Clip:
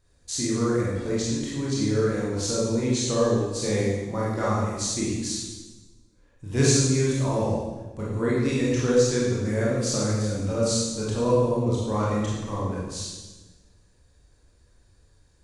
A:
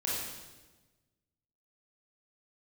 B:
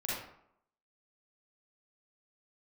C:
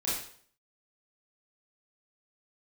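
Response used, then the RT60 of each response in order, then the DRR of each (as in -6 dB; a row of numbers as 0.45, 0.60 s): A; 1.2, 0.70, 0.55 s; -6.5, -7.5, -8.5 dB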